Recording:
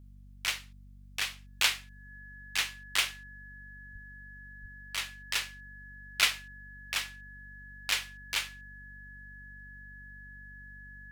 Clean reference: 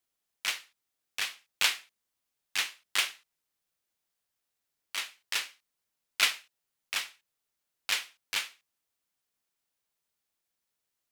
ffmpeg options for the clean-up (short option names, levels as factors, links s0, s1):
-filter_complex "[0:a]bandreject=f=48.3:t=h:w=4,bandreject=f=96.6:t=h:w=4,bandreject=f=144.9:t=h:w=4,bandreject=f=193.2:t=h:w=4,bandreject=f=241.5:t=h:w=4,bandreject=f=1700:w=30,asplit=3[s0][s1][s2];[s0]afade=t=out:st=3.92:d=0.02[s3];[s1]highpass=f=140:w=0.5412,highpass=f=140:w=1.3066,afade=t=in:st=3.92:d=0.02,afade=t=out:st=4.04:d=0.02[s4];[s2]afade=t=in:st=4.04:d=0.02[s5];[s3][s4][s5]amix=inputs=3:normalize=0,asplit=3[s6][s7][s8];[s6]afade=t=out:st=4.61:d=0.02[s9];[s7]highpass=f=140:w=0.5412,highpass=f=140:w=1.3066,afade=t=in:st=4.61:d=0.02,afade=t=out:st=4.73:d=0.02[s10];[s8]afade=t=in:st=4.73:d=0.02[s11];[s9][s10][s11]amix=inputs=3:normalize=0"